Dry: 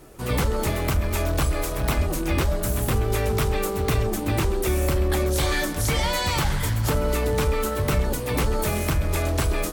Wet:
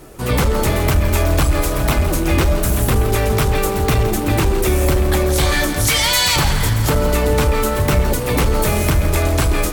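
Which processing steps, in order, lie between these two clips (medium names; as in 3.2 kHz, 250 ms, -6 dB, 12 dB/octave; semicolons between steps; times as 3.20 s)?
5.87–6.36 s: tilt shelf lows -8 dB, about 1.3 kHz; in parallel at +2.5 dB: hard clipper -19 dBFS, distortion -16 dB; on the sum: bit-crushed delay 167 ms, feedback 55%, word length 6-bit, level -11 dB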